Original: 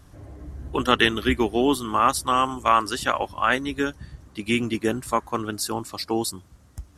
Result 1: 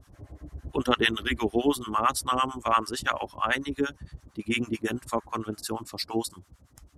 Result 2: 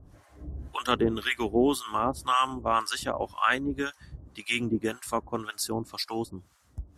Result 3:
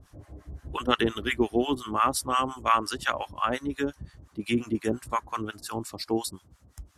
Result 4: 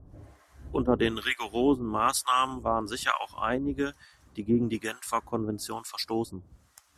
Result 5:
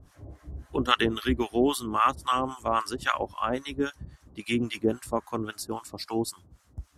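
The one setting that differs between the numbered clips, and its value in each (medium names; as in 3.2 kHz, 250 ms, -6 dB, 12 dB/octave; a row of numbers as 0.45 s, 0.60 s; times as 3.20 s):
harmonic tremolo, rate: 8.9 Hz, 1.9 Hz, 5.7 Hz, 1.1 Hz, 3.7 Hz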